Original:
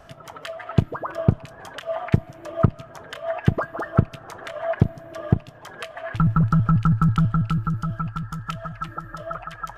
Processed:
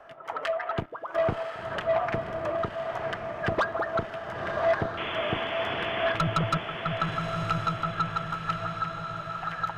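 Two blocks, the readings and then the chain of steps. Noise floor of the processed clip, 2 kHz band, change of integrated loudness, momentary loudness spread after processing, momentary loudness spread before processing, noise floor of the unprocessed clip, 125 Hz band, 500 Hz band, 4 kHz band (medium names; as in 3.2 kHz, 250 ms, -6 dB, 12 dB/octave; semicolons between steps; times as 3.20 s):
-40 dBFS, +4.0 dB, -5.5 dB, 7 LU, 17 LU, -45 dBFS, -13.5 dB, +2.0 dB, +6.5 dB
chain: three-band isolator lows -18 dB, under 350 Hz, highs -17 dB, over 2.7 kHz; random-step tremolo, depth 90%; saturation -27.5 dBFS, distortion -9 dB; painted sound noise, 4.97–6.12 s, 200–3500 Hz -42 dBFS; echo that smears into a reverb 1043 ms, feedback 51%, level -5 dB; trim +8 dB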